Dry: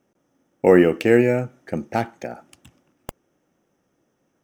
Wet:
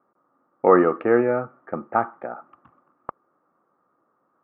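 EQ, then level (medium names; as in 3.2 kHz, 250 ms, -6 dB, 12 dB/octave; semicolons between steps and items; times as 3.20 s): high-pass 390 Hz 6 dB/octave; resonant low-pass 1.2 kHz, resonance Q 7.7; distance through air 390 m; 0.0 dB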